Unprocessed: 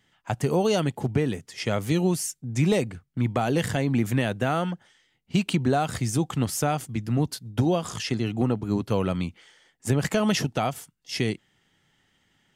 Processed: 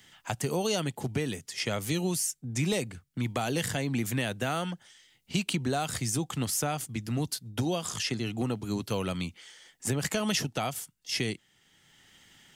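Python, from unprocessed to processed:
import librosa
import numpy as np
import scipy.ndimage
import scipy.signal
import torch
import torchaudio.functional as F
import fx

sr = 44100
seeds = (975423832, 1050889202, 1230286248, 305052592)

y = fx.high_shelf(x, sr, hz=2600.0, db=10.5)
y = fx.band_squash(y, sr, depth_pct=40)
y = y * 10.0 ** (-7.0 / 20.0)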